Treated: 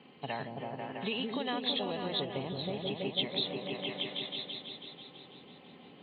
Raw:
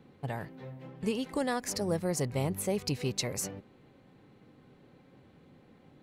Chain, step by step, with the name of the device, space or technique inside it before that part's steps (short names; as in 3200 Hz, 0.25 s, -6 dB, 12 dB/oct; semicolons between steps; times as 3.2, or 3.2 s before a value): 2.19–3.13 tilt shelf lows +4.5 dB; repeats that get brighter 0.164 s, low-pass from 400 Hz, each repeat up 1 oct, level 0 dB; hearing aid with frequency lowering (nonlinear frequency compression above 2900 Hz 4:1; compressor 4:1, threshold -34 dBFS, peak gain reduction 13 dB; speaker cabinet 290–5100 Hz, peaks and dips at 330 Hz -6 dB, 510 Hz -6 dB, 1500 Hz -6 dB, 2700 Hz +8 dB); gain +6 dB